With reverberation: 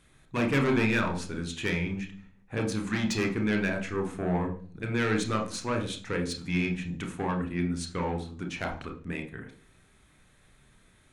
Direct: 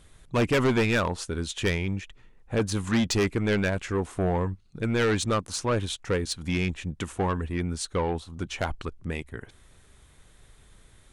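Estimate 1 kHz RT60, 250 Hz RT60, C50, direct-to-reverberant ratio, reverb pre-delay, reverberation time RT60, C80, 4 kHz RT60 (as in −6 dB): 0.40 s, 0.70 s, 10.5 dB, 3.0 dB, 27 ms, 0.45 s, 15.0 dB, 0.50 s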